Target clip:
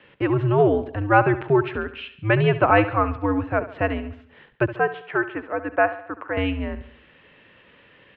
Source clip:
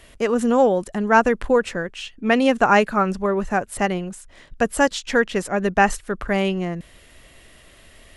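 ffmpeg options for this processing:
ffmpeg -i in.wav -filter_complex "[0:a]asettb=1/sr,asplit=3[link_01][link_02][link_03];[link_01]atrim=end=4.764[link_04];[link_02]atrim=start=4.76:end=6.37,asetpts=PTS-STARTPTS,afade=type=in:duration=0.004:curve=qsin,afade=type=out:start_time=1.606:duration=0.004:curve=qsin,acrossover=split=440 2300:gain=0.0891 1 0.0891[link_05][link_06][link_07];[link_05][link_06][link_07]amix=inputs=3:normalize=0[link_08];[link_03]atrim=start=6.366[link_09];[link_04][link_08]acrossfade=duration=0.004:curve1=hsin:curve2=qsin[link_10];[link_10][link_09]acrossfade=duration=0.004:curve1=qsin:curve2=hsin,aecho=1:1:70|140|210|280|350:0.2|0.0998|0.0499|0.0249|0.0125,highpass=frequency=190:width_type=q:width=0.5412,highpass=frequency=190:width_type=q:width=1.307,lowpass=frequency=3300:width_type=q:width=0.5176,lowpass=frequency=3300:width_type=q:width=0.7071,lowpass=frequency=3300:width_type=q:width=1.932,afreqshift=-110,volume=-1dB" out.wav

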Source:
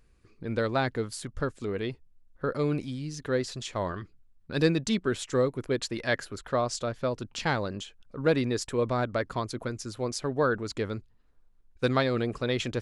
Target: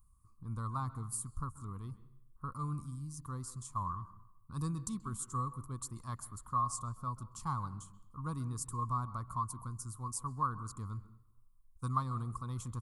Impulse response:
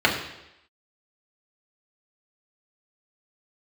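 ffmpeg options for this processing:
-filter_complex "[0:a]firequalizer=gain_entry='entry(110,0);entry(400,-25);entry(610,-28);entry(1100,8);entry(1600,-27);entry(2500,-29);entry(8900,8)':delay=0.05:min_phase=1,asplit=2[link_01][link_02];[1:a]atrim=start_sample=2205,adelay=130[link_03];[link_02][link_03]afir=irnorm=-1:irlink=0,volume=-33.5dB[link_04];[link_01][link_04]amix=inputs=2:normalize=0,volume=-3dB"

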